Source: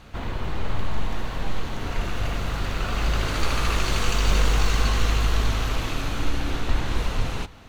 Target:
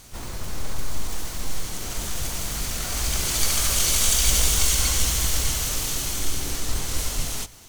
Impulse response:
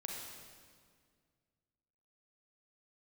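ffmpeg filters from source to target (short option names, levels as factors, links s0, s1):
-filter_complex "[0:a]aexciter=amount=11.8:drive=5.3:freq=4700,asplit=3[s0][s1][s2];[s1]asetrate=22050,aresample=44100,atempo=2,volume=0.562[s3];[s2]asetrate=58866,aresample=44100,atempo=0.749154,volume=0.708[s4];[s0][s3][s4]amix=inputs=3:normalize=0,volume=0.422"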